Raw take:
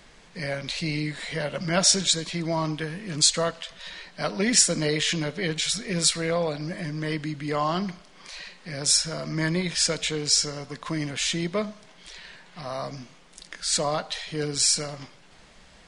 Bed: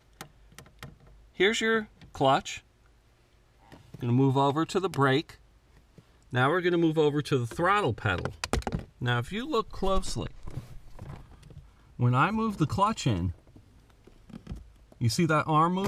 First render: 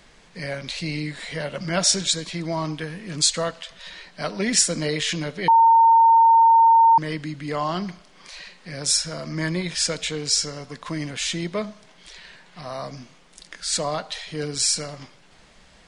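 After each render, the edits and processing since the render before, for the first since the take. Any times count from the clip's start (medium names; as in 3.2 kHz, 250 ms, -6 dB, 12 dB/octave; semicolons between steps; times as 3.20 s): 5.48–6.98 s: bleep 912 Hz -10.5 dBFS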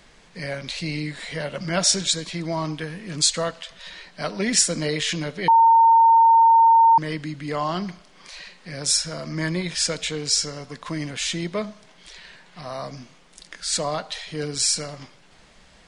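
no audible change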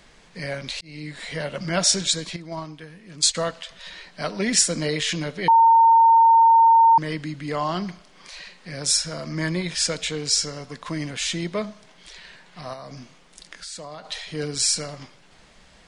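0.81–1.26 s: fade in; 2.36–3.35 s: gate -25 dBFS, range -10 dB; 12.73–14.05 s: compression, threshold -34 dBFS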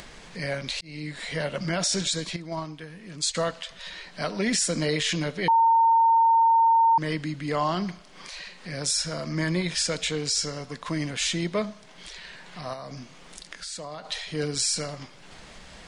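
peak limiter -15.5 dBFS, peak gain reduction 9.5 dB; upward compressor, threshold -37 dBFS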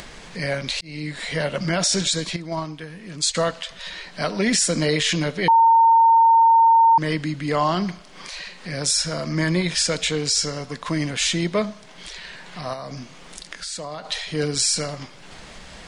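trim +5 dB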